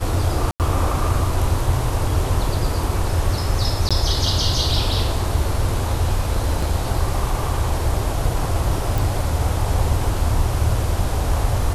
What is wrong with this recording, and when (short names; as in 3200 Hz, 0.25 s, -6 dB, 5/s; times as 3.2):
0.51–0.6 gap 88 ms
3.89–3.91 gap 16 ms
6.62 gap 3.6 ms
8.98 pop